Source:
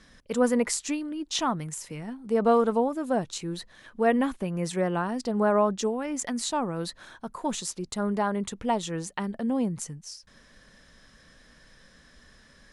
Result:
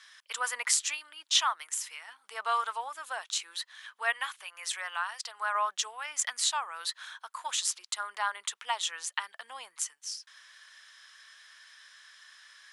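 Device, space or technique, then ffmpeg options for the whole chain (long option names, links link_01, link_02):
headphones lying on a table: -filter_complex "[0:a]highpass=frequency=1100:width=0.5412,highpass=frequency=1100:width=1.3066,equalizer=frequency=3200:width_type=o:width=0.37:gain=4.5,asettb=1/sr,asplit=3[link_01][link_02][link_03];[link_01]atrim=end=4.134[link_04];[link_02]atrim=start=4.13:end=5.55,asetpts=PTS-STARTPTS,afade=type=in:duration=0.004:curve=qsin,afade=type=out:start_time=1.416:duration=0.004:curve=qsin,highpass=frequency=800:poles=1[link_05];[link_03]atrim=start=5.546[link_06];[link_04][link_05]acrossfade=duration=0.004:curve1=hsin:curve2=qsin[link_07];[link_07][link_06]acrossfade=duration=0.004:curve1=qsin:curve2=hsin,volume=3.5dB"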